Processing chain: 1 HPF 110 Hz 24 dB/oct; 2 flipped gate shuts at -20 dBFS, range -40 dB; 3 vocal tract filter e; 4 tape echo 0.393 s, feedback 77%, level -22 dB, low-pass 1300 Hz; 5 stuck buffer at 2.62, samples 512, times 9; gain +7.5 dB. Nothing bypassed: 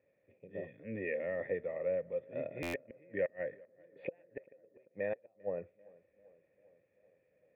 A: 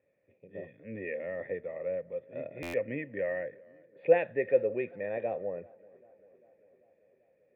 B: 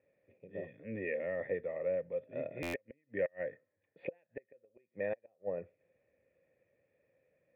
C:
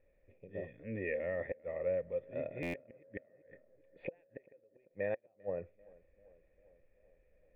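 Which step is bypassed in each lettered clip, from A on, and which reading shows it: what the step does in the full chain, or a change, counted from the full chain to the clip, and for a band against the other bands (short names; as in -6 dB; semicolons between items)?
2, momentary loudness spread change +1 LU; 4, momentary loudness spread change -3 LU; 1, 125 Hz band +3.5 dB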